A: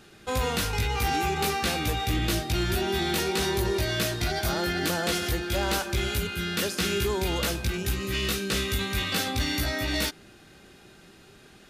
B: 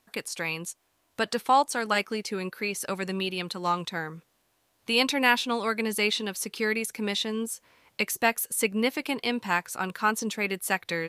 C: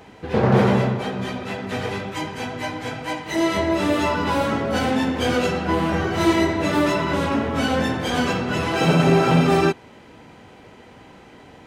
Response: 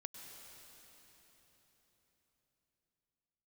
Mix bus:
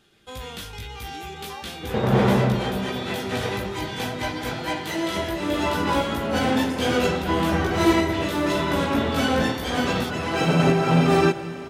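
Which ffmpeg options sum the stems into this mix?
-filter_complex "[0:a]equalizer=frequency=3300:width=6.5:gain=9.5,volume=-9.5dB[link_01];[1:a]highpass=frequency=810:poles=1,afwtdn=0.0355,volume=-18dB,asplit=2[link_02][link_03];[2:a]adelay=1600,volume=-3dB,asplit=2[link_04][link_05];[link_05]volume=-3.5dB[link_06];[link_03]apad=whole_len=584788[link_07];[link_04][link_07]sidechaincompress=threshold=-45dB:ratio=8:attack=7.3:release=563[link_08];[3:a]atrim=start_sample=2205[link_09];[link_06][link_09]afir=irnorm=-1:irlink=0[link_10];[link_01][link_02][link_08][link_10]amix=inputs=4:normalize=0"

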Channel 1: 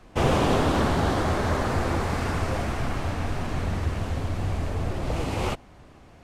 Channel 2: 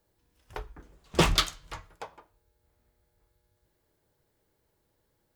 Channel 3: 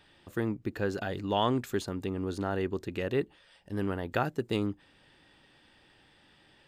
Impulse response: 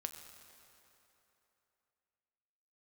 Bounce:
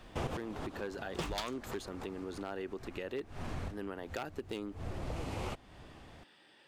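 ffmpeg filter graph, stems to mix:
-filter_complex "[0:a]volume=-3.5dB[link_01];[1:a]volume=-6.5dB[link_02];[2:a]aeval=exprs='0.0891*(abs(mod(val(0)/0.0891+3,4)-2)-1)':channel_layout=same,highpass=250,volume=-0.5dB,asplit=2[link_03][link_04];[link_04]apad=whole_len=274947[link_05];[link_01][link_05]sidechaincompress=threshold=-51dB:ratio=8:attack=5.3:release=144[link_06];[link_06][link_02][link_03]amix=inputs=3:normalize=0,acompressor=threshold=-42dB:ratio=2"

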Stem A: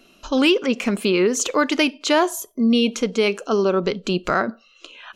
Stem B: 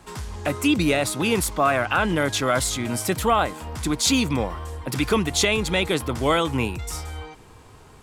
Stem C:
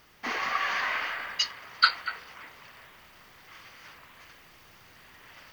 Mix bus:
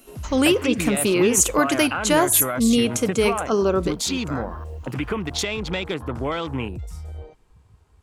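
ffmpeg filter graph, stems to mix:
ffmpeg -i stem1.wav -i stem2.wav -i stem3.wav -filter_complex "[0:a]highshelf=frequency=6800:width_type=q:width=1.5:gain=13.5,volume=-1dB,afade=type=out:start_time=3.77:duration=0.27:silence=0.237137,asplit=2[link_01][link_02];[1:a]afwtdn=0.0251,volume=0dB[link_03];[2:a]tiltshelf=frequency=970:gain=-8.5,volume=-19dB[link_04];[link_02]apad=whole_len=243808[link_05];[link_04][link_05]sidechaincompress=threshold=-21dB:ratio=8:attack=16:release=102[link_06];[link_03][link_06]amix=inputs=2:normalize=0,acompressor=threshold=-22dB:ratio=6,volume=0dB[link_07];[link_01][link_07]amix=inputs=2:normalize=0" out.wav

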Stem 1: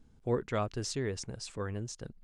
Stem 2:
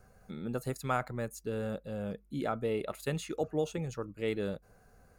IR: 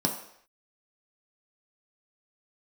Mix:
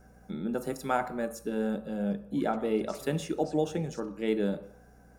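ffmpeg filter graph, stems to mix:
-filter_complex "[0:a]alimiter=level_in=6.5dB:limit=-24dB:level=0:latency=1,volume=-6.5dB,adelay=2050,volume=-11dB[link_01];[1:a]volume=-1dB,asplit=2[link_02][link_03];[link_03]volume=-9.5dB[link_04];[2:a]atrim=start_sample=2205[link_05];[link_04][link_05]afir=irnorm=-1:irlink=0[link_06];[link_01][link_02][link_06]amix=inputs=3:normalize=0,lowshelf=frequency=220:gain=-6,aeval=exprs='val(0)+0.00141*(sin(2*PI*60*n/s)+sin(2*PI*2*60*n/s)/2+sin(2*PI*3*60*n/s)/3+sin(2*PI*4*60*n/s)/4+sin(2*PI*5*60*n/s)/5)':channel_layout=same"

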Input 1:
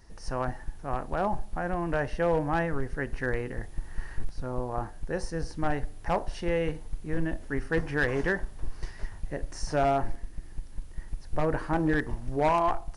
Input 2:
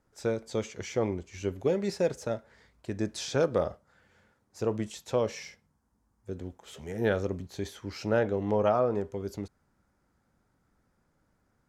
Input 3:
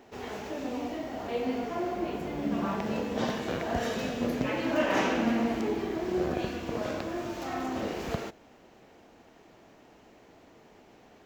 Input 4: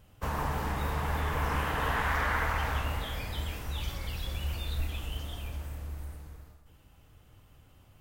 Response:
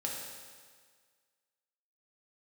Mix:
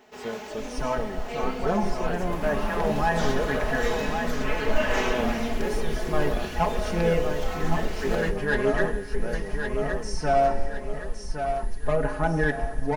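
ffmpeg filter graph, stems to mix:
-filter_complex "[0:a]asplit=2[link_01][link_02];[link_02]adelay=4.3,afreqshift=0.34[link_03];[link_01][link_03]amix=inputs=2:normalize=1,adelay=500,volume=1.5dB,asplit=3[link_04][link_05][link_06];[link_05]volume=-9dB[link_07];[link_06]volume=-4dB[link_08];[1:a]volume=-6.5dB,asplit=2[link_09][link_10];[link_10]volume=-4dB[link_11];[2:a]lowshelf=frequency=470:gain=-9,volume=1.5dB[link_12];[3:a]acompressor=threshold=-36dB:ratio=6,adelay=2100,volume=-0.5dB[link_13];[4:a]atrim=start_sample=2205[link_14];[link_07][link_14]afir=irnorm=-1:irlink=0[link_15];[link_08][link_11]amix=inputs=2:normalize=0,aecho=0:1:1114|2228|3342|4456|5570|6684:1|0.4|0.16|0.064|0.0256|0.0102[link_16];[link_04][link_09][link_12][link_13][link_15][link_16]amix=inputs=6:normalize=0,aecho=1:1:4.7:0.57"

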